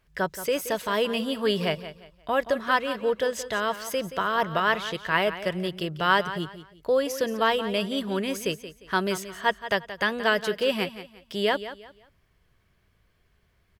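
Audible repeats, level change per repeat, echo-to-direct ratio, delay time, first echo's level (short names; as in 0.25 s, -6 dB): 3, -11.0 dB, -12.5 dB, 0.176 s, -13.0 dB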